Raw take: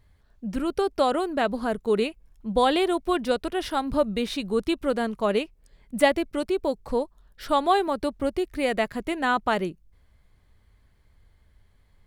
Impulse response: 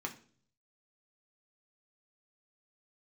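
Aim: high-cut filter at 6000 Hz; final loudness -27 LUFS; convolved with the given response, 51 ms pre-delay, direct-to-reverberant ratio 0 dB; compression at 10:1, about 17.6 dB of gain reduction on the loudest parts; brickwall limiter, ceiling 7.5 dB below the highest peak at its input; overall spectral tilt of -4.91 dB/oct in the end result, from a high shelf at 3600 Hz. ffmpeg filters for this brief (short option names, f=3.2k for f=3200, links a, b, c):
-filter_complex "[0:a]lowpass=6k,highshelf=f=3.6k:g=-7,acompressor=threshold=-33dB:ratio=10,alimiter=level_in=6dB:limit=-24dB:level=0:latency=1,volume=-6dB,asplit=2[a][b];[1:a]atrim=start_sample=2205,adelay=51[c];[b][c]afir=irnorm=-1:irlink=0,volume=-1.5dB[d];[a][d]amix=inputs=2:normalize=0,volume=10dB"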